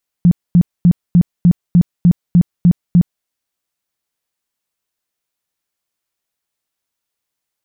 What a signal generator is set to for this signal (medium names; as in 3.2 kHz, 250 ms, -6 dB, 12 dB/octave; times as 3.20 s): tone bursts 174 Hz, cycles 11, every 0.30 s, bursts 10, -4.5 dBFS